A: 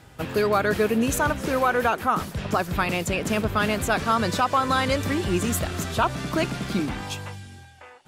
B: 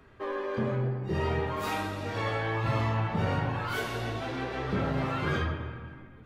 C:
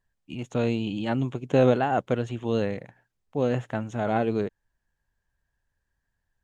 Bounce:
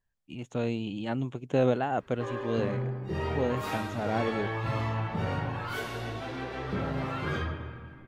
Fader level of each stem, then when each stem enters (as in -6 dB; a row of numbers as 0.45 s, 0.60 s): mute, -2.5 dB, -5.0 dB; mute, 2.00 s, 0.00 s